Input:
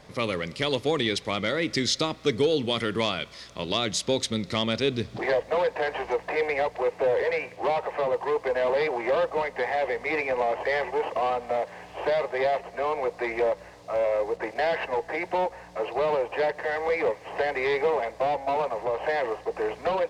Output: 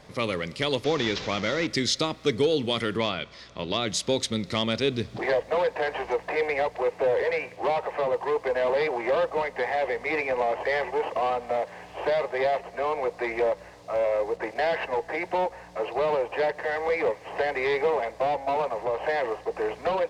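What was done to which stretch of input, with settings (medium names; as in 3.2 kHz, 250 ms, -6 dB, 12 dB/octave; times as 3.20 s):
0.84–1.67 s: one-bit delta coder 32 kbps, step -29.5 dBFS
2.97–3.87 s: distance through air 92 m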